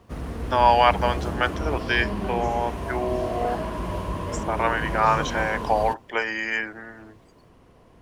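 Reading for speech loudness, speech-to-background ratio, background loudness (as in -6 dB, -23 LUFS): -24.0 LUFS, 6.5 dB, -30.5 LUFS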